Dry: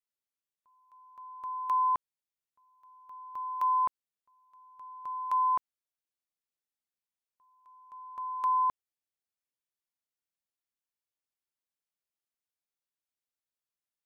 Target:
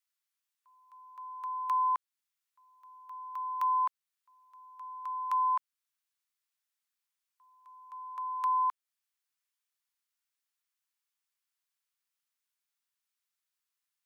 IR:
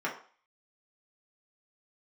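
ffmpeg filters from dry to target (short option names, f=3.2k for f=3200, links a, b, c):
-filter_complex "[0:a]highpass=f=1k:w=0.5412,highpass=f=1k:w=1.3066,asplit=2[a][b];[b]acompressor=threshold=-45dB:ratio=6,volume=-1dB[c];[a][c]amix=inputs=2:normalize=0"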